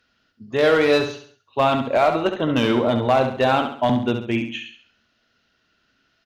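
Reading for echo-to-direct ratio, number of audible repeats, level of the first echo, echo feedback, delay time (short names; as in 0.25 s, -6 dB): -6.5 dB, 4, -7.5 dB, 41%, 68 ms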